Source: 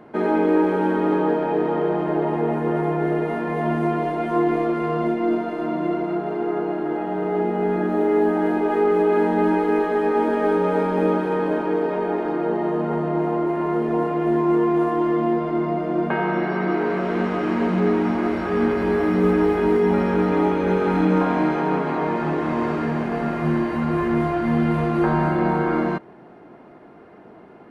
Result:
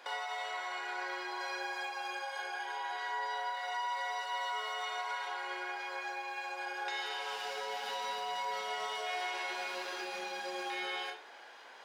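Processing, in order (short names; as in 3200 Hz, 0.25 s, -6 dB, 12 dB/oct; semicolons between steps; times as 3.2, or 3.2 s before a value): tilt +2.5 dB/oct; compressor 6:1, threshold -31 dBFS, peak gain reduction 13 dB; digital reverb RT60 0.95 s, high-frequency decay 0.65×, pre-delay 10 ms, DRR 2 dB; speed mistake 33 rpm record played at 78 rpm; brick-wall FIR high-pass 170 Hz; gain -7.5 dB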